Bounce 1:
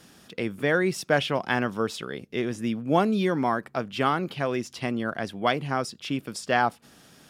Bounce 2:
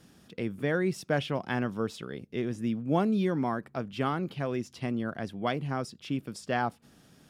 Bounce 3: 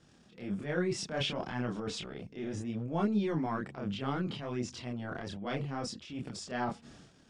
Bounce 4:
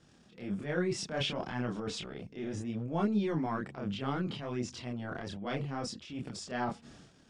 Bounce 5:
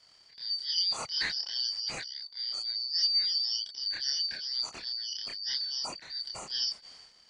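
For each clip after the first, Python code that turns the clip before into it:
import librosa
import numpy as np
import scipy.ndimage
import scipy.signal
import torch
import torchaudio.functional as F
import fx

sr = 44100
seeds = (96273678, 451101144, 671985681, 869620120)

y1 = fx.low_shelf(x, sr, hz=360.0, db=9.0)
y1 = y1 * 10.0 ** (-8.5 / 20.0)
y2 = scipy.signal.sosfilt(scipy.signal.butter(6, 8400.0, 'lowpass', fs=sr, output='sos'), y1)
y2 = fx.transient(y2, sr, attack_db=-8, sustain_db=10)
y2 = fx.chorus_voices(y2, sr, voices=2, hz=0.64, base_ms=27, depth_ms=2.9, mix_pct=50)
y2 = y2 * 10.0 ** (-1.5 / 20.0)
y3 = y2
y4 = fx.band_shuffle(y3, sr, order='4321')
y4 = y4 * 10.0 ** (2.0 / 20.0)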